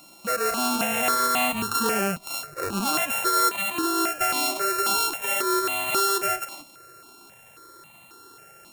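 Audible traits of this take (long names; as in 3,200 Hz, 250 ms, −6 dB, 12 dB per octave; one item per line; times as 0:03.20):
a buzz of ramps at a fixed pitch in blocks of 32 samples
notches that jump at a steady rate 3.7 Hz 430–1,500 Hz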